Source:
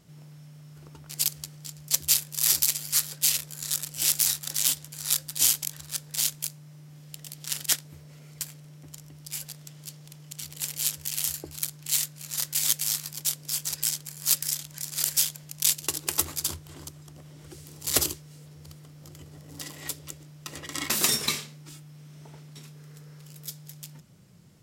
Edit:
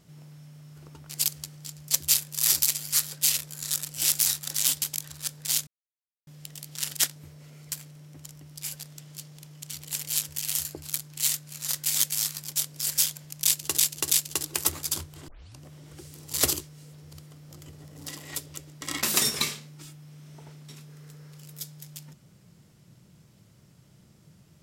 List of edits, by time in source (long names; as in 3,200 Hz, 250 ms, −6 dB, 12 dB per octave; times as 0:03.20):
0:04.82–0:05.51: remove
0:06.36–0:06.96: silence
0:13.55–0:15.05: remove
0:15.64–0:15.97: repeat, 3 plays
0:16.81: tape start 0.32 s
0:20.34–0:20.68: remove